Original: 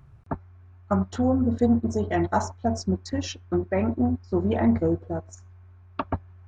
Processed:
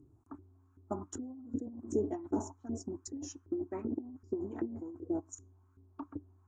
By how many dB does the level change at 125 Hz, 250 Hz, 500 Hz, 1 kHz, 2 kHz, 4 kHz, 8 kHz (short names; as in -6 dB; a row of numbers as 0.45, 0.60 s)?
-20.5 dB, -14.0 dB, -12.0 dB, -18.5 dB, under -20 dB, -19.0 dB, n/a